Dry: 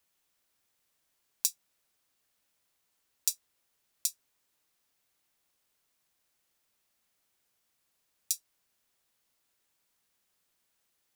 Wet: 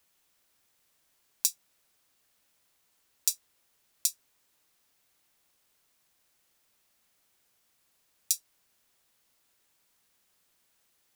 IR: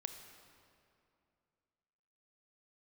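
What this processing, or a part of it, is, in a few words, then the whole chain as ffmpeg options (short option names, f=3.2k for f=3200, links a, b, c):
clipper into limiter: -af "asoftclip=type=hard:threshold=-4.5dB,alimiter=limit=-8dB:level=0:latency=1:release=79,volume=5.5dB"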